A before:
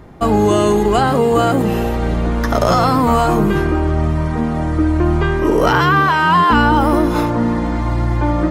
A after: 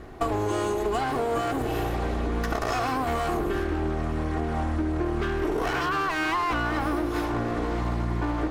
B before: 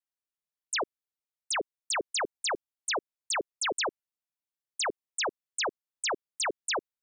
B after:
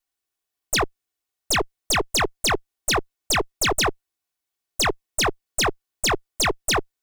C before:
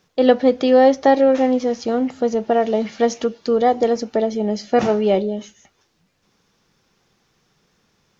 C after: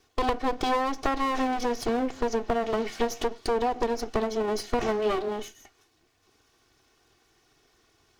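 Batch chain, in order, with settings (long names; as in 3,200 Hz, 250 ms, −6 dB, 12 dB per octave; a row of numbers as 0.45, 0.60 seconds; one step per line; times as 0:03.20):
lower of the sound and its delayed copy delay 2.7 ms
downward compressor 6 to 1, threshold −23 dBFS
normalise the peak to −12 dBFS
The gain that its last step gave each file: −1.0, +11.0, +0.5 decibels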